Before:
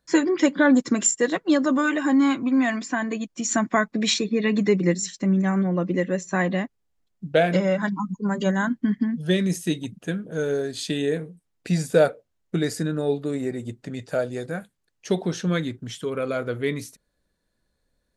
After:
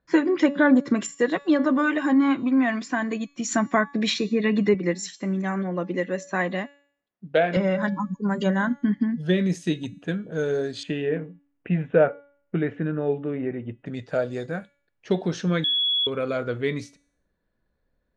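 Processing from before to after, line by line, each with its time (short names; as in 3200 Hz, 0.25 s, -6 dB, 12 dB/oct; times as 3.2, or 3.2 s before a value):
4.74–7.57 HPF 330 Hz 6 dB/oct
10.83–13.86 elliptic low-pass 3000 Hz
15.64–16.07 bleep 3370 Hz -19 dBFS
whole clip: low-pass opened by the level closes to 2200 Hz, open at -19 dBFS; de-hum 284.1 Hz, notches 37; treble ducked by the level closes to 2700 Hz, closed at -16.5 dBFS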